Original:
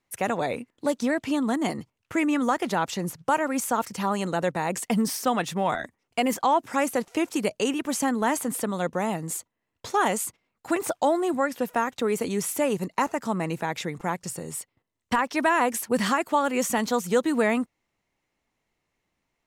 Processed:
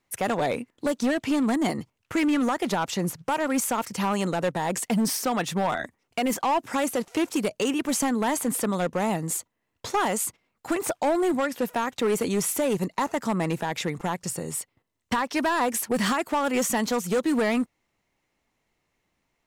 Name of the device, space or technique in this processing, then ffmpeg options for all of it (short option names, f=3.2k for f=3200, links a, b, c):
limiter into clipper: -af "alimiter=limit=-16dB:level=0:latency=1:release=185,asoftclip=type=hard:threshold=-22dB,volume=3dB"